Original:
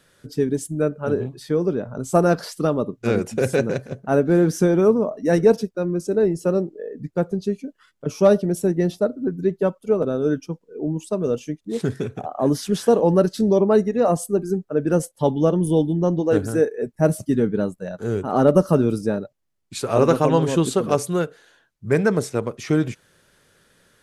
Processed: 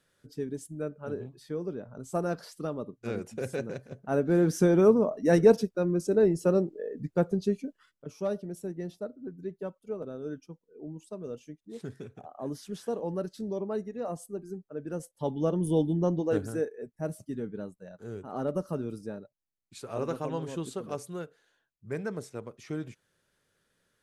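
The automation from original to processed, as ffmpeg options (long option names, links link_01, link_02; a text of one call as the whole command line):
ffmpeg -i in.wav -af "volume=6.5dB,afade=type=in:start_time=3.82:duration=1:silence=0.334965,afade=type=out:start_time=7.63:duration=0.45:silence=0.237137,afade=type=in:start_time=14.98:duration=0.95:silence=0.298538,afade=type=out:start_time=15.93:duration=0.96:silence=0.316228" out.wav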